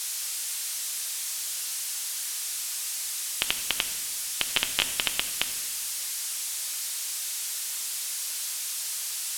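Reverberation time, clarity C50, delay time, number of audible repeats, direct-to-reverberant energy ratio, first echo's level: 1.2 s, 10.5 dB, no echo, no echo, 7.0 dB, no echo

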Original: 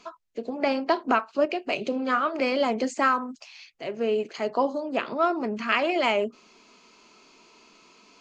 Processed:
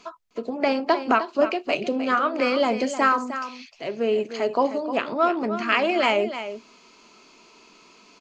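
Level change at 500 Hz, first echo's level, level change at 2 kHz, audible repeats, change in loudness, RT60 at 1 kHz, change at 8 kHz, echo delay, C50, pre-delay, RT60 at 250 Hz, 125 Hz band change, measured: +3.0 dB, -11.0 dB, +3.0 dB, 1, +2.5 dB, no reverb, +3.0 dB, 307 ms, no reverb, no reverb, no reverb, no reading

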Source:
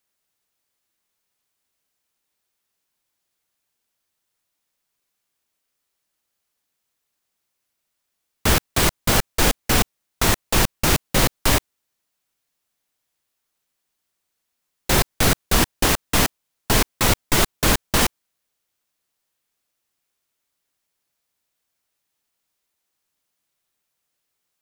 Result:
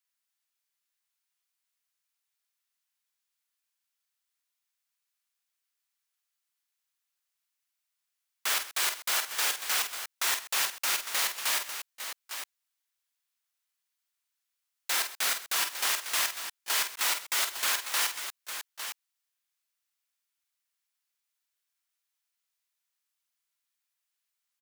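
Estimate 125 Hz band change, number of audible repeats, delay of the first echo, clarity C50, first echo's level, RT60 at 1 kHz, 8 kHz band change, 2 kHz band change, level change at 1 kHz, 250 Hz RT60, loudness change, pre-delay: under -40 dB, 3, 46 ms, no reverb, -8.0 dB, no reverb, -6.5 dB, -7.0 dB, -11.0 dB, no reverb, -9.0 dB, no reverb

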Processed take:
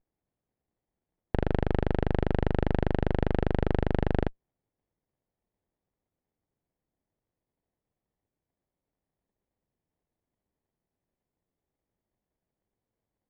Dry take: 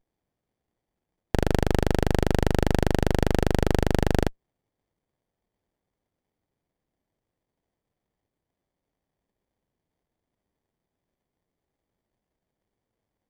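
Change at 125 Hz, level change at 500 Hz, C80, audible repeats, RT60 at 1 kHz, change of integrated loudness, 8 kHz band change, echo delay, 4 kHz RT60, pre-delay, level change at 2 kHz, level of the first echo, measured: -3.5 dB, -4.5 dB, no reverb, no echo, no reverb, -4.5 dB, under -25 dB, no echo, no reverb, no reverb, -6.5 dB, no echo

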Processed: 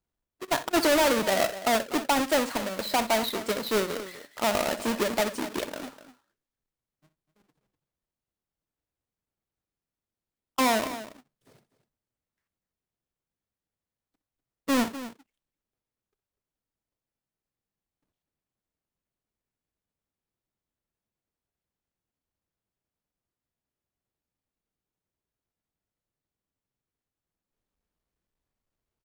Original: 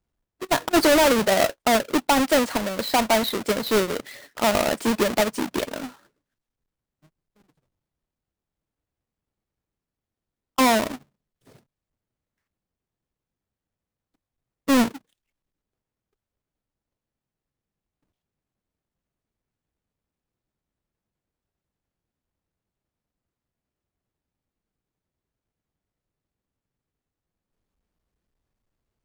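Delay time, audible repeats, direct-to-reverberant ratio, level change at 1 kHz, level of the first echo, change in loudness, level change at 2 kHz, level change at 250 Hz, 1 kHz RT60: 62 ms, 2, no reverb, -4.5 dB, -14.5 dB, -5.0 dB, -4.5 dB, -6.5 dB, no reverb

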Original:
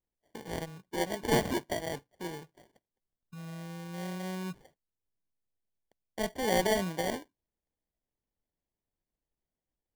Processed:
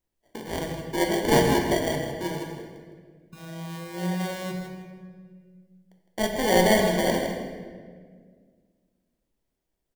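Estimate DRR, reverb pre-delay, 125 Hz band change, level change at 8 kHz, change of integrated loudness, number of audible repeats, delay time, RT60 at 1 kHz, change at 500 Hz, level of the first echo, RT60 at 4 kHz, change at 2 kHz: 1.0 dB, 3 ms, +9.0 dB, +7.5 dB, +8.5 dB, 1, 160 ms, 1.4 s, +9.0 dB, -9.0 dB, 1.2 s, +8.5 dB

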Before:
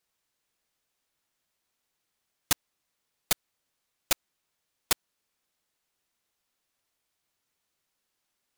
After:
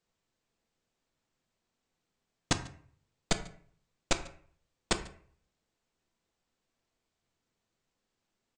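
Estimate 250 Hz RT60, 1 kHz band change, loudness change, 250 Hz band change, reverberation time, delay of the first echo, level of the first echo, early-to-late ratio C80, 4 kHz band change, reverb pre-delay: 0.55 s, 0.0 dB, -5.0 dB, +6.5 dB, 0.55 s, 144 ms, -23.0 dB, 15.0 dB, -4.0 dB, 4 ms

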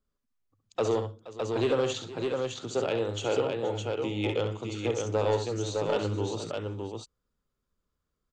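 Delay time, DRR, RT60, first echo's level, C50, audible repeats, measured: 67 ms, no reverb, no reverb, -7.5 dB, no reverb, 3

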